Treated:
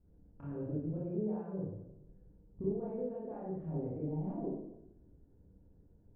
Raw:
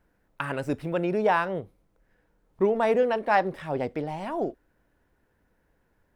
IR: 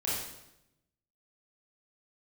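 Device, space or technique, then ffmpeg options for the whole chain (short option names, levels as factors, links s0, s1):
television next door: -filter_complex "[0:a]acompressor=threshold=0.01:ratio=4,lowpass=300[s0];[1:a]atrim=start_sample=2205[s1];[s0][s1]afir=irnorm=-1:irlink=0,volume=1.12"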